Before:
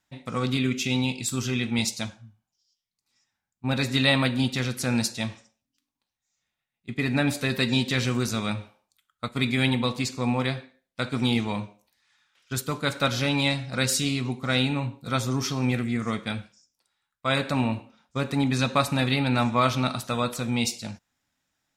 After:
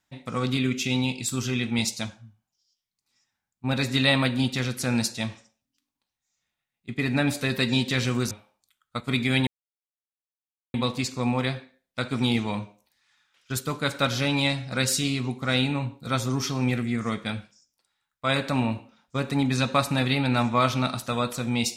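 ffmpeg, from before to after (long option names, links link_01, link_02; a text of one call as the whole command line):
ffmpeg -i in.wav -filter_complex "[0:a]asplit=3[link_01][link_02][link_03];[link_01]atrim=end=8.312[link_04];[link_02]atrim=start=8.588:end=9.75,asetpts=PTS-STARTPTS,afade=type=out:start_time=1.158:duration=0.004:curve=hsin,apad=pad_dur=1.27[link_05];[link_03]atrim=start=9.75,asetpts=PTS-STARTPTS,afade=type=in:duration=0.004:curve=hsin[link_06];[link_05][link_06]concat=n=2:v=0:a=1[link_07];[link_04][link_07]acrossfade=duration=0.004:curve1=hsin:curve2=hsin" out.wav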